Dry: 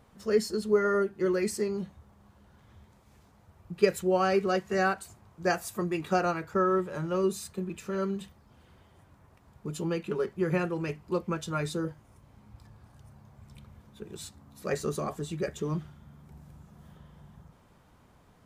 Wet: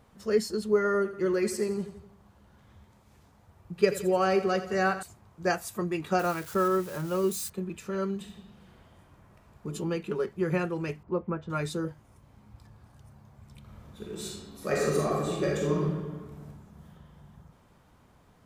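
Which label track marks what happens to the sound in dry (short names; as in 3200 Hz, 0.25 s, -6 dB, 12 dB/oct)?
0.960000	5.030000	feedback echo 85 ms, feedback 52%, level -12.5 dB
6.190000	7.500000	switching spikes of -33 dBFS
8.170000	9.670000	reverb throw, RT60 1.5 s, DRR 1 dB
11.030000	11.500000	LPF 1400 Hz
13.600000	16.460000	reverb throw, RT60 1.4 s, DRR -4 dB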